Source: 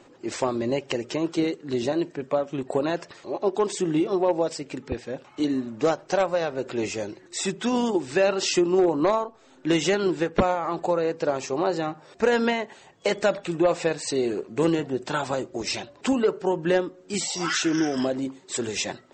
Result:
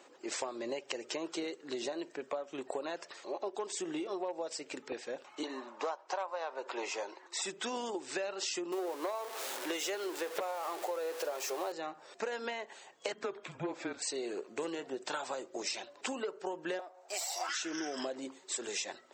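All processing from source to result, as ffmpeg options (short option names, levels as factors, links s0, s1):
-filter_complex "[0:a]asettb=1/sr,asplit=3[s0][s1][s2];[s0]atrim=end=5.434[s3];[s1]atrim=start=5.43:end=7.42,asetpts=PTS-STARTPTS,afade=t=in:d=0.004:c=qsin,afade=t=out:st=1.986:d=0.004:c=qsin,highpass=390,lowpass=5900,equalizer=f=970:w=2.3:g=13[s4];[s2]atrim=start=7.416[s5];[s3][s4]acrossfade=d=0.004:c1=hsin:c2=qsin[s6];[s6][s5]acrossfade=d=0.004:c1=qsin:c2=hsin,asettb=1/sr,asplit=3[s7][s8][s9];[s7]atrim=end=8.724[s10];[s8]atrim=start=8.72:end=11.72,asetpts=PTS-STARTPTS,afade=t=in:d=0.004:c=qsin,afade=t=out:st=2.996:d=0.004:c=qsin,aeval=exprs='val(0)+0.5*0.0398*sgn(val(0))':c=same,lowshelf=f=300:t=q:w=1.5:g=-9.5[s11];[s9]atrim=start=11.716[s12];[s10][s11]acrossfade=d=0.004:c1=hsin:c2=qsin[s13];[s13][s12]acrossfade=d=0.004:c1=qsin:c2=hsin,asettb=1/sr,asplit=3[s14][s15][s16];[s14]atrim=end=13.124[s17];[s15]atrim=start=13.12:end=14.02,asetpts=PTS-STARTPTS,afade=t=in:d=0.004:c=qsin,afade=t=out:st=0.896:d=0.004:c=qsin,lowpass=f=1600:p=1,afreqshift=-190,acompressor=mode=upward:threshold=0.0251:ratio=2.5:attack=3.2:release=140:knee=2.83:detection=peak[s18];[s16]atrim=start=14.016[s19];[s17][s18]acrossfade=d=0.004:c1=hsin:c2=qsin[s20];[s20][s19]acrossfade=d=0.004:c1=qsin:c2=hsin,asettb=1/sr,asplit=3[s21][s22][s23];[s21]atrim=end=16.794[s24];[s22]atrim=start=16.79:end=17.49,asetpts=PTS-STARTPTS,afade=t=in:d=0.004:c=qsin,afade=t=out:st=0.696:d=0.004:c=qsin,aeval=exprs='if(lt(val(0),0),0.447*val(0),val(0))':c=same,highpass=f=690:t=q:w=5.5,equalizer=f=3200:w=6.2:g=-5[s25];[s23]atrim=start=17.486[s26];[s24][s25]acrossfade=d=0.004:c1=hsin:c2=qsin[s27];[s27][s26]acrossfade=d=0.004:c1=qsin:c2=hsin,highpass=440,highshelf=f=6700:g=6,acompressor=threshold=0.0282:ratio=6,volume=0.668"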